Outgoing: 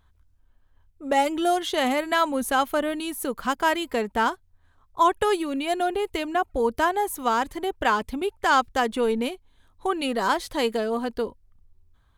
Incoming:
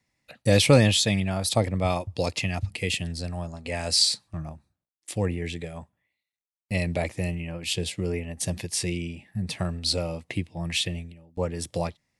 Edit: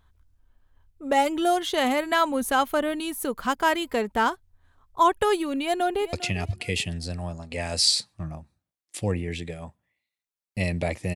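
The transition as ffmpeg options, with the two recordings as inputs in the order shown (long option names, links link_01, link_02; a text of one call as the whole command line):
ffmpeg -i cue0.wav -i cue1.wav -filter_complex "[0:a]apad=whole_dur=11.15,atrim=end=11.15,atrim=end=6.132[link_01];[1:a]atrim=start=2.268:end=7.29[link_02];[link_01][link_02]acrossfade=duration=0.004:curve1=hsin:curve2=hsin,asplit=2[link_03][link_04];[link_04]afade=type=in:start_time=5.6:duration=0.01,afade=type=out:start_time=6.13:duration=0.01,aecho=0:1:400|800|1200:0.16788|0.0419701|0.0104925[link_05];[link_03][link_05]amix=inputs=2:normalize=0" out.wav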